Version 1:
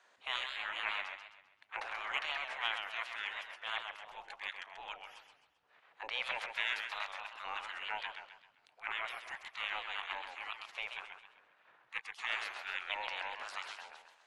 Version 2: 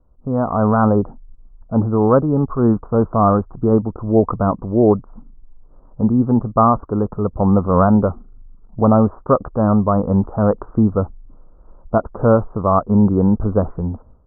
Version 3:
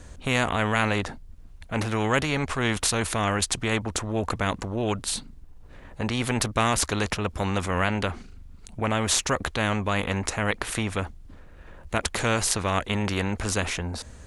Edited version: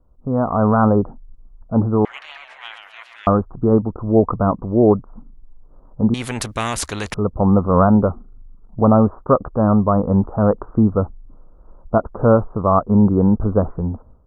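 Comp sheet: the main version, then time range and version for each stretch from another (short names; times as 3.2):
2
2.05–3.27 from 1
6.14–7.14 from 3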